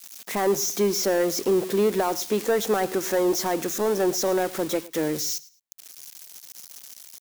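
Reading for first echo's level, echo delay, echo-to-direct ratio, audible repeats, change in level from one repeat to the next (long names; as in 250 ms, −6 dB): −20.0 dB, 108 ms, −20.0 dB, 2, −12.5 dB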